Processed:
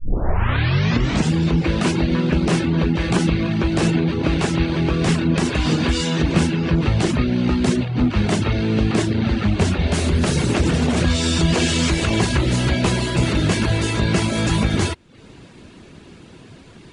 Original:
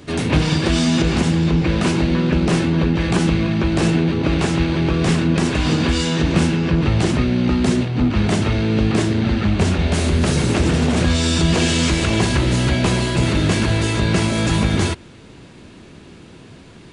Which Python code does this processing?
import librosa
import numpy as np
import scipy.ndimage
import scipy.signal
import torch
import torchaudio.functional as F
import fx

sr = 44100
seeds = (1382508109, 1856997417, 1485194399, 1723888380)

y = fx.tape_start_head(x, sr, length_s=1.34)
y = fx.dereverb_blind(y, sr, rt60_s=0.5)